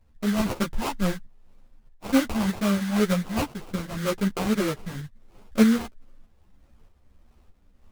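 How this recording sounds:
phaser sweep stages 2, 2 Hz, lowest notch 420–1,700 Hz
aliases and images of a low sample rate 1,800 Hz, jitter 20%
tremolo saw up 1.6 Hz, depth 55%
a shimmering, thickened sound

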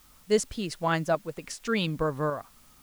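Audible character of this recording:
tremolo saw up 0.87 Hz, depth 40%
a quantiser's noise floor 10 bits, dither triangular

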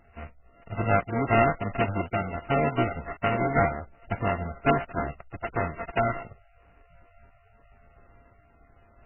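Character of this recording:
a buzz of ramps at a fixed pitch in blocks of 64 samples
tremolo saw up 0.96 Hz, depth 35%
aliases and images of a low sample rate 3,400 Hz, jitter 20%
MP3

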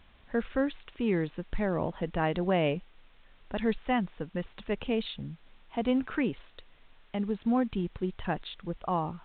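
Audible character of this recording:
a quantiser's noise floor 10 bits, dither triangular
mu-law

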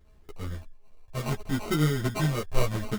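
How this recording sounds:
a buzz of ramps at a fixed pitch in blocks of 16 samples
phaser sweep stages 12, 0.7 Hz, lowest notch 220–2,800 Hz
aliases and images of a low sample rate 1,700 Hz, jitter 0%
a shimmering, thickened sound

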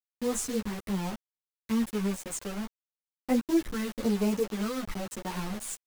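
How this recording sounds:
phaser sweep stages 4, 1 Hz, lowest notch 660–4,900 Hz
a quantiser's noise floor 6 bits, dither none
a shimmering, thickened sound

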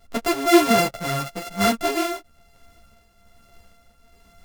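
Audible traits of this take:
a buzz of ramps at a fixed pitch in blocks of 64 samples
tremolo triangle 1.2 Hz, depth 55%
a shimmering, thickened sound

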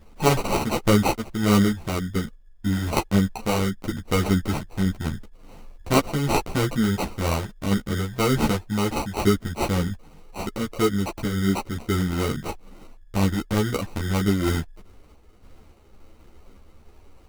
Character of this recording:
sample-and-hold tremolo, depth 55%
aliases and images of a low sample rate 1,700 Hz, jitter 0%
a shimmering, thickened sound

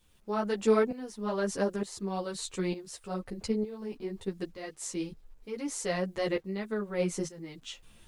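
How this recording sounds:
tremolo saw up 1.1 Hz, depth 80%
a quantiser's noise floor 12 bits, dither none
a shimmering, thickened sound

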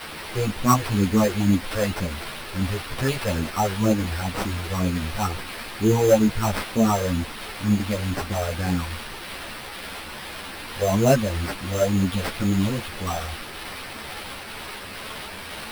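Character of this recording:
a quantiser's noise floor 6 bits, dither triangular
phaser sweep stages 6, 2.1 Hz, lowest notch 240–1,200 Hz
aliases and images of a low sample rate 6,800 Hz, jitter 0%
a shimmering, thickened sound

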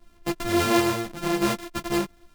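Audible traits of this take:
a buzz of ramps at a fixed pitch in blocks of 128 samples
tremolo saw up 2.5 Hz, depth 30%
a shimmering, thickened sound

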